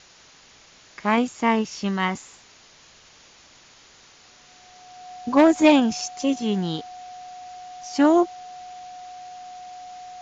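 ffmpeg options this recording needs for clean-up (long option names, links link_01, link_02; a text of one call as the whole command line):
ffmpeg -i in.wav -af "bandreject=frequency=730:width=30,afwtdn=0.0045" out.wav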